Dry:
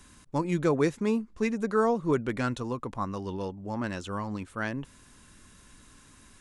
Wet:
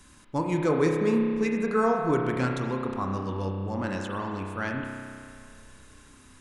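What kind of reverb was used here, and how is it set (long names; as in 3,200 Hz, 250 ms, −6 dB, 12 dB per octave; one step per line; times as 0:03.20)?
spring reverb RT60 2.3 s, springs 31 ms, chirp 60 ms, DRR 1 dB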